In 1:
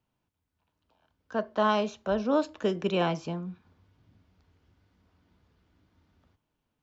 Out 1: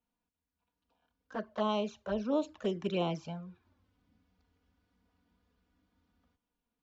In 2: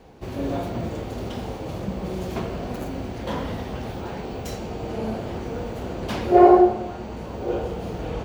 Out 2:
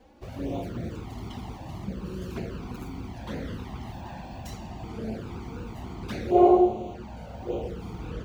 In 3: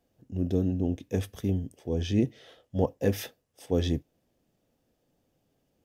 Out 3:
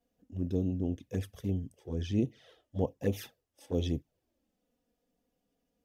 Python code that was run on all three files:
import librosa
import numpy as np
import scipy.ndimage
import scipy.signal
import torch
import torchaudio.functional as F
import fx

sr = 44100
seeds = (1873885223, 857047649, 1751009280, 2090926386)

y = fx.env_flanger(x, sr, rest_ms=4.2, full_db=-22.0)
y = y * librosa.db_to_amplitude(-4.0)